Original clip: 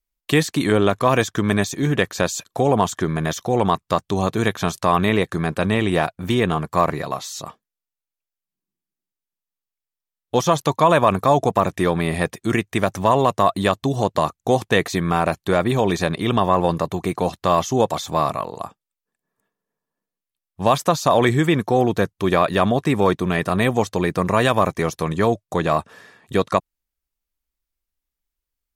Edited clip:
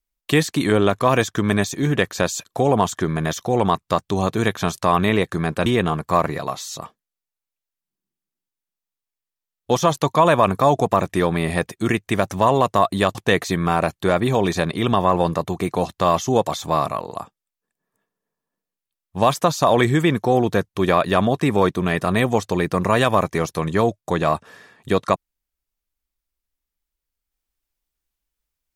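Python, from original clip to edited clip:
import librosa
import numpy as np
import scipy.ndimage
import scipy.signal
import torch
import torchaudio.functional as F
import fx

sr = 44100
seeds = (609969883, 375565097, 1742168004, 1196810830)

y = fx.edit(x, sr, fx.cut(start_s=5.66, length_s=0.64),
    fx.cut(start_s=13.79, length_s=0.8), tone=tone)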